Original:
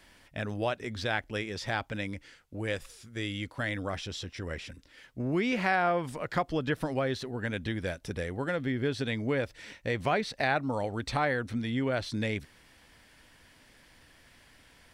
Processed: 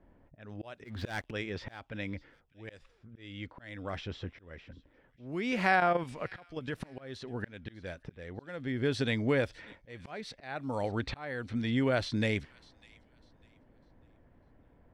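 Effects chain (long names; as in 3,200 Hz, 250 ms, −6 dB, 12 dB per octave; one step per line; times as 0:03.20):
low-pass that shuts in the quiet parts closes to 560 Hz, open at −26 dBFS
0:00.84–0:01.31: leveller curve on the samples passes 3
volume swells 557 ms
0:05.80–0:06.80: output level in coarse steps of 9 dB
delay with a high-pass on its return 600 ms, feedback 30%, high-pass 2,600 Hz, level −20 dB
level +1.5 dB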